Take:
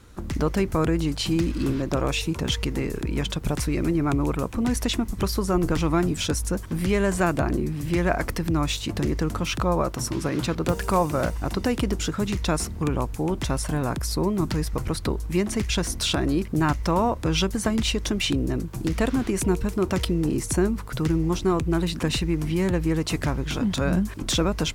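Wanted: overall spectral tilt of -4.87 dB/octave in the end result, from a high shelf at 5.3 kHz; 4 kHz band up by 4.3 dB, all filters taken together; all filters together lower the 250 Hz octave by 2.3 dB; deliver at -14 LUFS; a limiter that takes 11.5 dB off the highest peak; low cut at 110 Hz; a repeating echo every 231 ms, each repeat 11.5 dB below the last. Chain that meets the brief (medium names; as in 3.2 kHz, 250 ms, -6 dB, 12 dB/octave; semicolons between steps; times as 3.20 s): high-pass 110 Hz; peaking EQ 250 Hz -3 dB; peaking EQ 4 kHz +9 dB; treble shelf 5.3 kHz -9 dB; peak limiter -18 dBFS; feedback delay 231 ms, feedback 27%, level -11.5 dB; trim +14 dB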